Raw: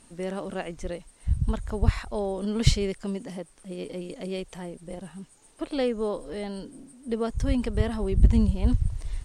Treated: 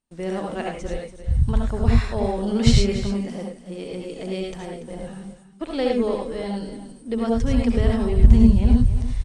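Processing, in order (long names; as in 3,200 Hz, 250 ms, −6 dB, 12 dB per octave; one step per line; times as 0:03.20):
noise gate −49 dBFS, range −31 dB
low-pass filter 8,300 Hz 12 dB per octave
single-tap delay 287 ms −13 dB
convolution reverb, pre-delay 58 ms, DRR 0.5 dB
level +2 dB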